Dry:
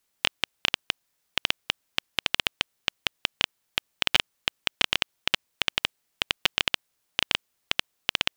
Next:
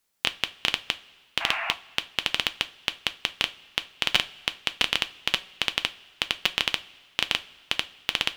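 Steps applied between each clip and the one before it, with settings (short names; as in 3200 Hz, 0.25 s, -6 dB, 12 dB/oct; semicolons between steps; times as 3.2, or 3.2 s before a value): painted sound noise, 1.4–1.73, 600–2900 Hz -31 dBFS; two-slope reverb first 0.24 s, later 1.7 s, from -18 dB, DRR 10 dB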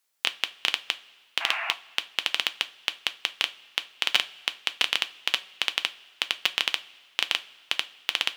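HPF 650 Hz 6 dB/oct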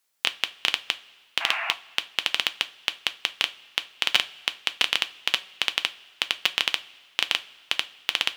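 low shelf 110 Hz +8 dB; gain +1.5 dB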